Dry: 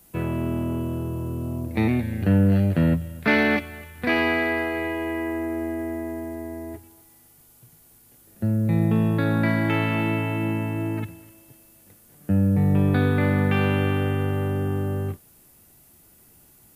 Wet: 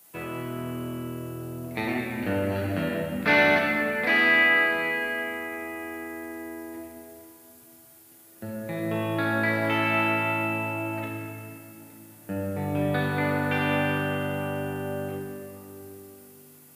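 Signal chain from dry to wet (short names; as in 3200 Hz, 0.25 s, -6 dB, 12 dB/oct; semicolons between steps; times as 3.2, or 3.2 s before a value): HPF 730 Hz 6 dB/oct; shoebox room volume 120 m³, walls hard, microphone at 0.47 m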